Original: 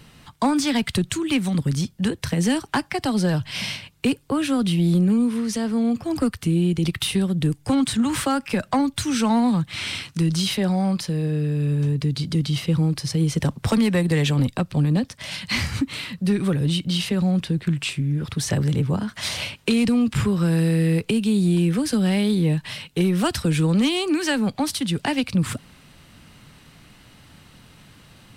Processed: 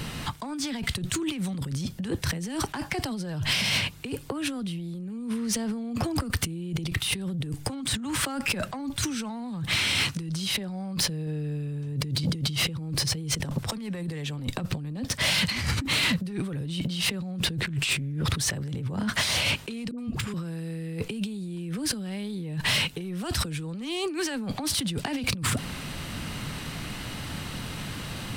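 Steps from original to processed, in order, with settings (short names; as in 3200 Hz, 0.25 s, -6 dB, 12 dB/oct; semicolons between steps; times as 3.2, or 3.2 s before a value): 10.56–11.27 low shelf 160 Hz +4 dB; negative-ratio compressor -33 dBFS, ratio -1; soft clip -23.5 dBFS, distortion -12 dB; 19.91–20.34 dispersion highs, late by 72 ms, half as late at 630 Hz; gain +4 dB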